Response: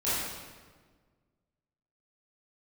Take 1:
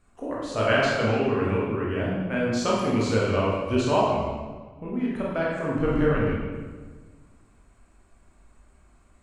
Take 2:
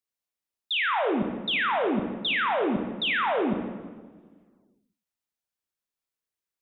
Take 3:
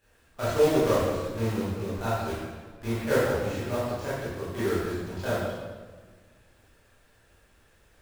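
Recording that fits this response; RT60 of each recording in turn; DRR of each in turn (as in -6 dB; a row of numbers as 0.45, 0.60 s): 3; 1.5, 1.5, 1.5 s; -6.0, 3.5, -13.0 dB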